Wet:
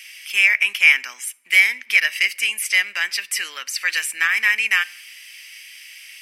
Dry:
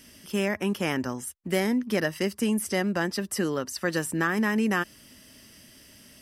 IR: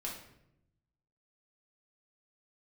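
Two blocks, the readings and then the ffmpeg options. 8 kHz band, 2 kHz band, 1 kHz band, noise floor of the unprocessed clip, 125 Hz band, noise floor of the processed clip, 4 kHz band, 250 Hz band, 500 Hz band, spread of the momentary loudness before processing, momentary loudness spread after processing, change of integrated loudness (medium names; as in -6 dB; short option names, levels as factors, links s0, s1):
+8.5 dB, +15.5 dB, -3.0 dB, -53 dBFS, under -35 dB, -47 dBFS, +13.5 dB, under -30 dB, -19.0 dB, 5 LU, 11 LU, +10.0 dB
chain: -filter_complex "[0:a]highpass=f=2300:t=q:w=7.5,asplit=2[s0][s1];[1:a]atrim=start_sample=2205[s2];[s1][s2]afir=irnorm=-1:irlink=0,volume=0.133[s3];[s0][s3]amix=inputs=2:normalize=0,volume=2.24"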